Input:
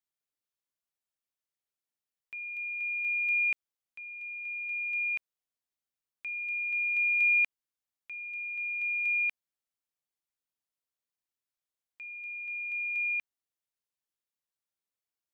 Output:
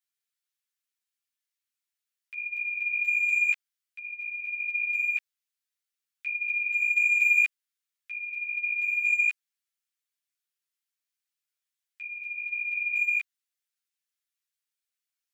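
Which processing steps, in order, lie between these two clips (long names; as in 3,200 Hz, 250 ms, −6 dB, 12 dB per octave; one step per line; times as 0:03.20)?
high-pass filter 1,400 Hz 24 dB per octave
in parallel at −8.5 dB: hard clipping −29.5 dBFS, distortion −10 dB
on the sum: string-ensemble chorus
level +4.5 dB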